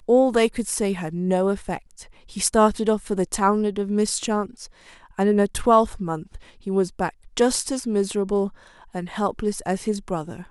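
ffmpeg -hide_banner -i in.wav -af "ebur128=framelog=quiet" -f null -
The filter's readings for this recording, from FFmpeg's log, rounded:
Integrated loudness:
  I:         -22.8 LUFS
  Threshold: -33.4 LUFS
Loudness range:
  LRA:         2.7 LU
  Threshold: -43.3 LUFS
  LRA low:   -25.0 LUFS
  LRA high:  -22.3 LUFS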